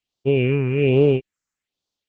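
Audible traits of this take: tremolo triangle 2.3 Hz, depth 30%; phasing stages 4, 1.2 Hz, lowest notch 550–1900 Hz; Opus

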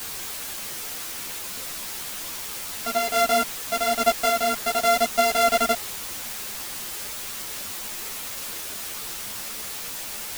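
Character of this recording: a buzz of ramps at a fixed pitch in blocks of 64 samples; random-step tremolo, depth 55%; a quantiser's noise floor 6-bit, dither triangular; a shimmering, thickened sound

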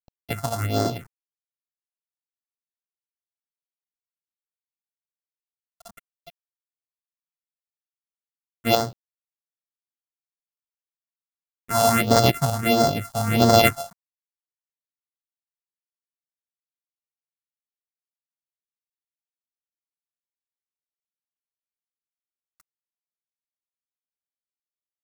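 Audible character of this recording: a buzz of ramps at a fixed pitch in blocks of 64 samples; tremolo saw up 0.8 Hz, depth 55%; a quantiser's noise floor 8-bit, dither none; phasing stages 4, 1.5 Hz, lowest notch 340–2500 Hz

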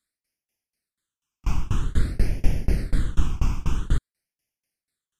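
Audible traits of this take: phasing stages 8, 0.5 Hz, lowest notch 530–1200 Hz; tremolo saw down 4.1 Hz, depth 100%; MP3

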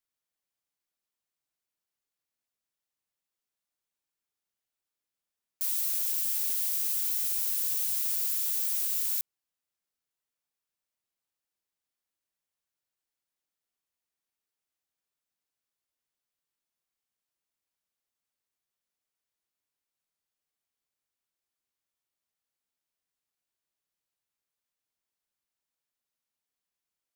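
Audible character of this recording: noise floor -90 dBFS; spectral tilt +6.0 dB/octave

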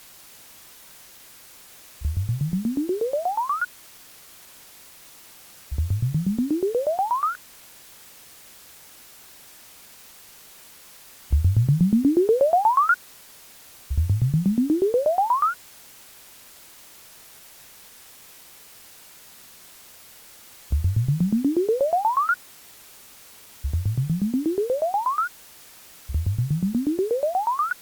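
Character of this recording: tremolo saw down 8.3 Hz, depth 95%; a quantiser's noise floor 8-bit, dither triangular; Opus

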